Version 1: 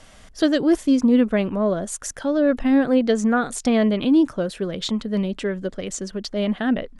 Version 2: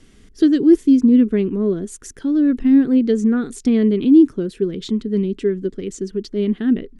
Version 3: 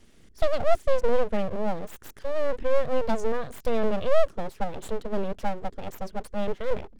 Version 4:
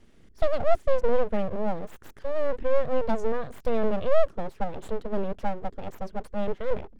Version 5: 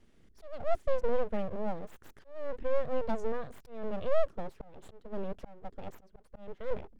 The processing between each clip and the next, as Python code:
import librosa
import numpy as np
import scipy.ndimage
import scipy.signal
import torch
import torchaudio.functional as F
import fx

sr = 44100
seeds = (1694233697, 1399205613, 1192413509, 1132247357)

y1 = fx.curve_eq(x, sr, hz=(130.0, 410.0, 580.0, 2000.0), db=(0, 8, -17, -6))
y2 = np.abs(y1)
y2 = y2 * 10.0 ** (-5.5 / 20.0)
y3 = fx.high_shelf(y2, sr, hz=3300.0, db=-9.5)
y4 = fx.auto_swell(y3, sr, attack_ms=357.0)
y4 = y4 * 10.0 ** (-6.5 / 20.0)